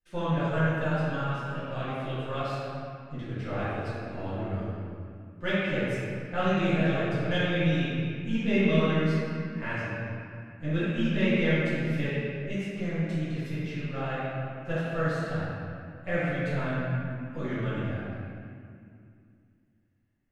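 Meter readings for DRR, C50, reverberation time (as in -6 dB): -13.0 dB, -5.0 dB, 2.3 s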